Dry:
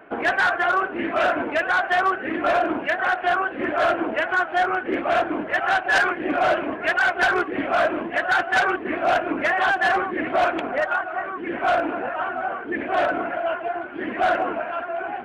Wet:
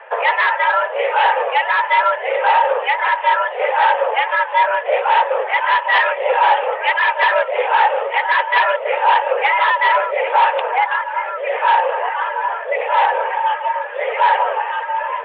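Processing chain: dynamic bell 1.4 kHz, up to -6 dB, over -34 dBFS, Q 1.6; mistuned SSB +220 Hz 190–3200 Hz; trim +8 dB

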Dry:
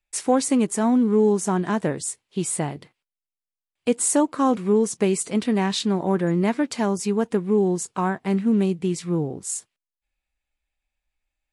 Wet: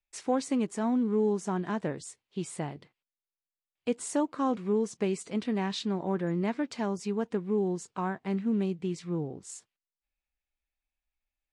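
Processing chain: low-pass 5.9 kHz 12 dB/octave; trim -8.5 dB

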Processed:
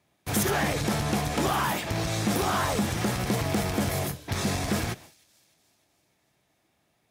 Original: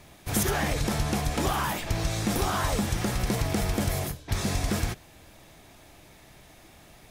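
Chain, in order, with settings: treble shelf 4.1 kHz -2 dB; gate with hold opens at -39 dBFS; saturation -20.5 dBFS, distortion -19 dB; high-pass 100 Hz 12 dB/octave; feedback echo behind a high-pass 303 ms, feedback 55%, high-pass 3.4 kHz, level -23 dB; trim +3.5 dB

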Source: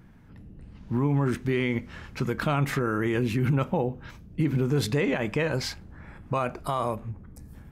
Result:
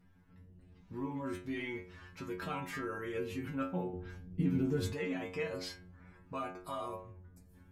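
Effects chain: inharmonic resonator 89 Hz, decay 0.51 s, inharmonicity 0.002; 3.93–4.93 s: bass shelf 490 Hz +11 dB

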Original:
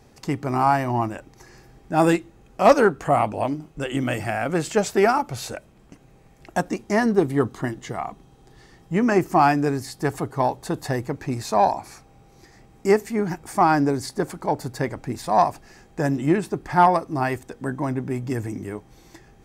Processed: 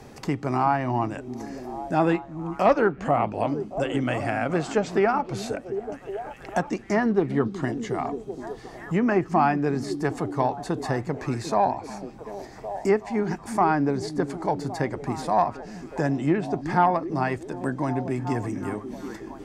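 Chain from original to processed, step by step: repeats whose band climbs or falls 371 ms, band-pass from 210 Hz, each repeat 0.7 oct, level -8.5 dB; low-pass that closes with the level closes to 2.9 kHz, closed at -15 dBFS; three bands compressed up and down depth 40%; trim -2.5 dB

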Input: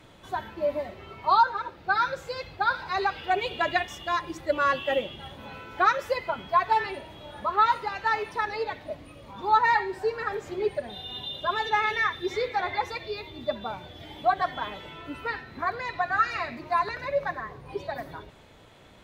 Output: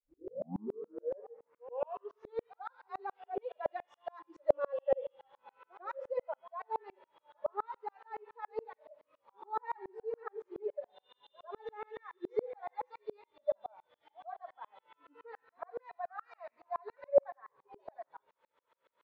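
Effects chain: tape start-up on the opening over 2.70 s; spectral noise reduction 21 dB; in parallel at 0 dB: compression, threshold -37 dBFS, peak gain reduction 20.5 dB; on the sum: bit crusher 11-bit; band-pass filter 520 Hz, Q 5.5; pre-echo 97 ms -19.5 dB; on a send at -21 dB: reverberation RT60 0.60 s, pre-delay 4 ms; on the sum: sawtooth tremolo in dB swelling 7.1 Hz, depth 37 dB; trim +6.5 dB

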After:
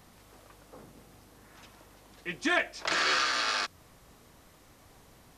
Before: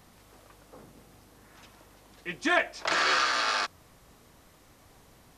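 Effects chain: dynamic bell 860 Hz, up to -5 dB, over -39 dBFS, Q 0.84

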